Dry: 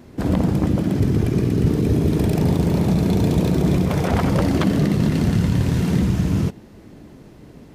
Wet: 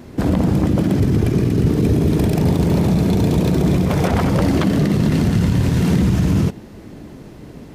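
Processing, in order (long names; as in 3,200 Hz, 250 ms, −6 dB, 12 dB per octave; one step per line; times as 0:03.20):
brickwall limiter −14 dBFS, peak gain reduction 5.5 dB
level +6 dB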